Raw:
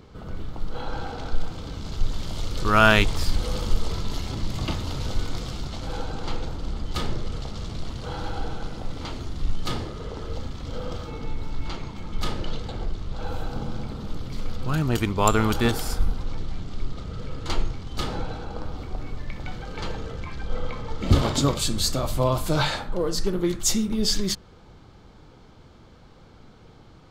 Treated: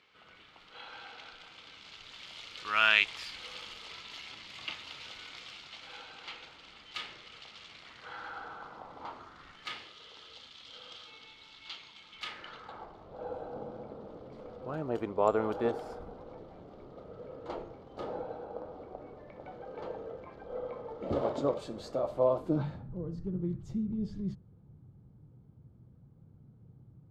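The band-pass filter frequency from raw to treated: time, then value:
band-pass filter, Q 2.2
7.67 s 2.5 kHz
9.02 s 870 Hz
9.96 s 3.2 kHz
12.07 s 3.2 kHz
13.17 s 560 Hz
22.32 s 560 Hz
22.78 s 130 Hz

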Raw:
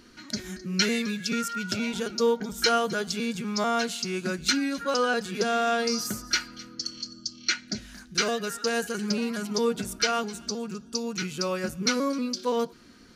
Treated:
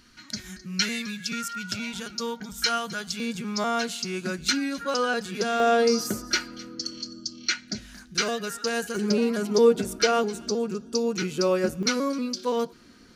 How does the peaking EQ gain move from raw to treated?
peaking EQ 420 Hz 1.6 oct
-11 dB
from 3.20 s -1 dB
from 5.60 s +9 dB
from 7.46 s -1 dB
from 8.96 s +9 dB
from 11.83 s +0.5 dB

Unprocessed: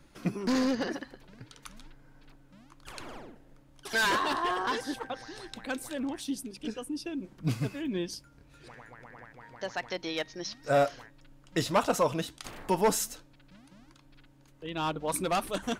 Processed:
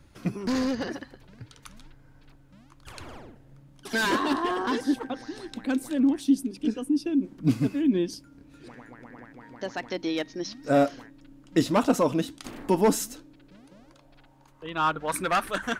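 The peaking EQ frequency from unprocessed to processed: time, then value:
peaking EQ +13 dB 0.92 oct
3.27 s 84 Hz
4.01 s 270 Hz
13.13 s 270 Hz
15.06 s 1.6 kHz

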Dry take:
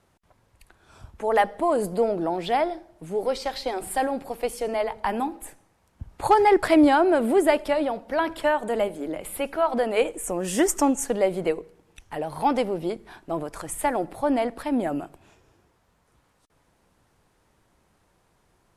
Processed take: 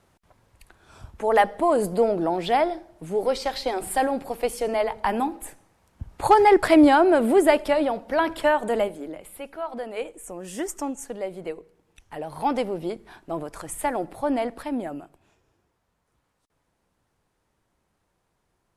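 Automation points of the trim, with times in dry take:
8.75 s +2 dB
9.30 s -9 dB
11.35 s -9 dB
12.53 s -1.5 dB
14.59 s -1.5 dB
15.03 s -8 dB

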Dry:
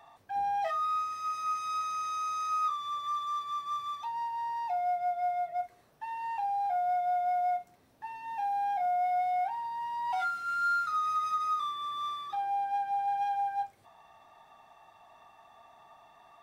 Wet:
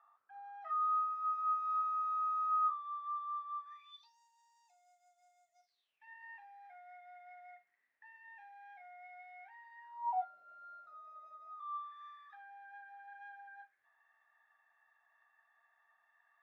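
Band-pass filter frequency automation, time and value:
band-pass filter, Q 9.9
3.61 s 1.3 kHz
4.19 s 7 kHz
5.52 s 7 kHz
6.10 s 1.9 kHz
9.78 s 1.9 kHz
10.27 s 610 Hz
11.41 s 610 Hz
11.95 s 1.7 kHz

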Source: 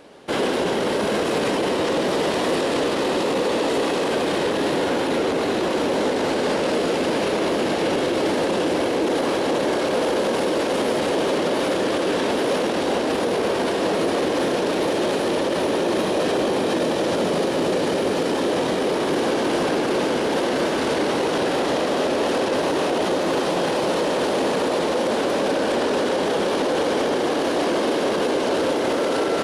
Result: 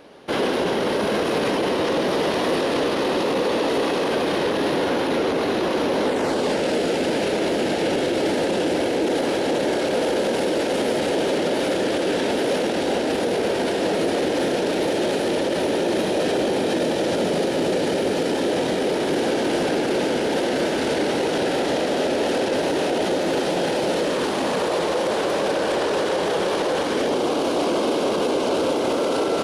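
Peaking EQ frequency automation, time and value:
peaking EQ -10.5 dB 0.29 oct
6.05 s 7.7 kHz
6.54 s 1.1 kHz
23.98 s 1.1 kHz
24.69 s 250 Hz
26.72 s 250 Hz
27.15 s 1.8 kHz

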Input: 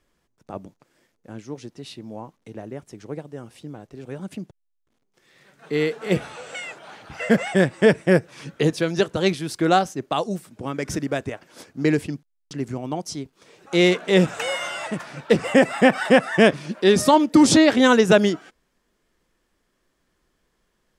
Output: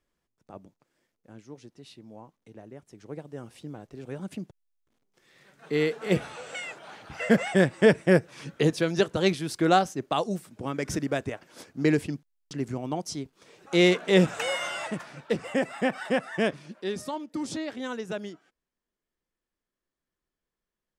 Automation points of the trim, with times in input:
2.84 s -10.5 dB
3.38 s -3 dB
14.81 s -3 dB
15.40 s -11 dB
16.54 s -11 dB
17.15 s -19 dB

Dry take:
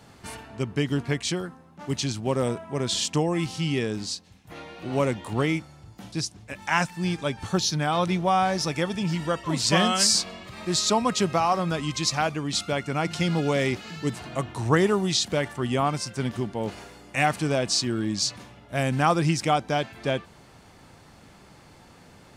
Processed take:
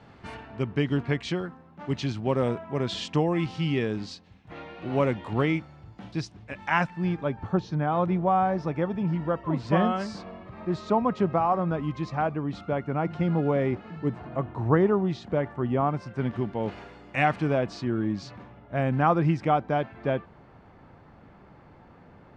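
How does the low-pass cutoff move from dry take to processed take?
6.60 s 2.8 kHz
7.41 s 1.2 kHz
15.88 s 1.2 kHz
16.60 s 2.7 kHz
17.22 s 2.7 kHz
17.70 s 1.6 kHz

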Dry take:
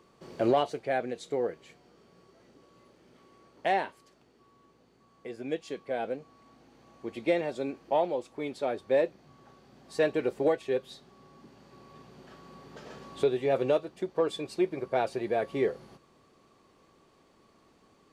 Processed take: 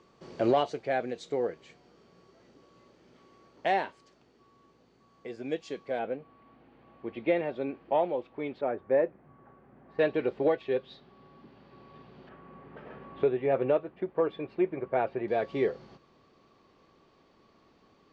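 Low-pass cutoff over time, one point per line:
low-pass 24 dB/octave
7 kHz
from 5.99 s 3.1 kHz
from 8.61 s 2 kHz
from 9.99 s 3.9 kHz
from 12.29 s 2.5 kHz
from 15.28 s 5.5 kHz

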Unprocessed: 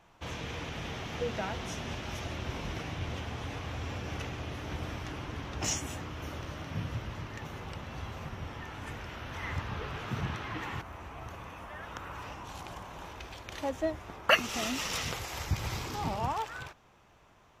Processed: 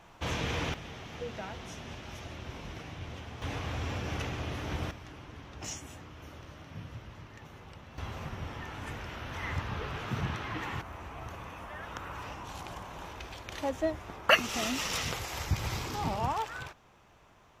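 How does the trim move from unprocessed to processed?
+6 dB
from 0.74 s -5.5 dB
from 3.42 s +2.5 dB
from 4.91 s -8 dB
from 7.98 s +1 dB

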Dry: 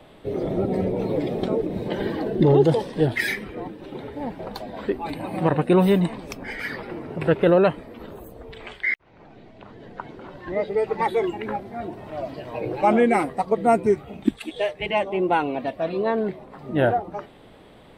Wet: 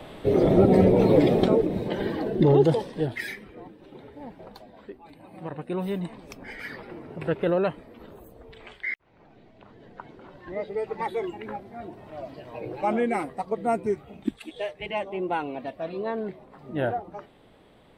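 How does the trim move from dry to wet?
1.29 s +6.5 dB
1.93 s -2 dB
2.66 s -2 dB
3.35 s -10.5 dB
4.45 s -10.5 dB
5.05 s -19 dB
6.43 s -7 dB

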